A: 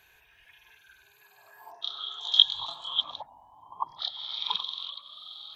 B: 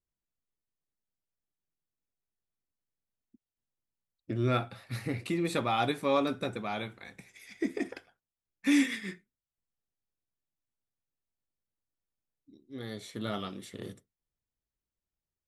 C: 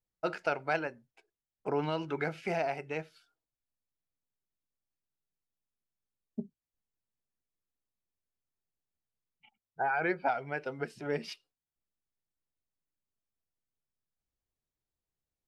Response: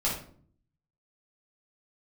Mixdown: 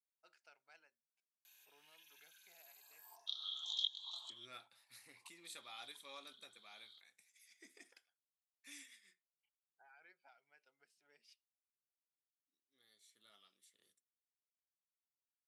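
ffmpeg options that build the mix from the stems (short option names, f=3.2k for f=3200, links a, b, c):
-filter_complex "[0:a]equalizer=f=1.8k:w=1.2:g=-7.5,acompressor=threshold=-37dB:ratio=3,aeval=exprs='val(0)+0.000316*(sin(2*PI*50*n/s)+sin(2*PI*2*50*n/s)/2+sin(2*PI*3*50*n/s)/3+sin(2*PI*4*50*n/s)/4+sin(2*PI*5*50*n/s)/5)':c=same,adelay=1450,volume=3dB[a];[1:a]volume=-9dB,afade=t=out:st=8.17:d=0.71:silence=0.398107,asplit=2[b][c];[2:a]volume=-19dB[d];[c]apad=whole_len=309069[e];[a][e]sidechaincompress=threshold=-55dB:ratio=4:attack=23:release=1270[f];[f][b][d]amix=inputs=3:normalize=0,lowpass=11k,aderivative"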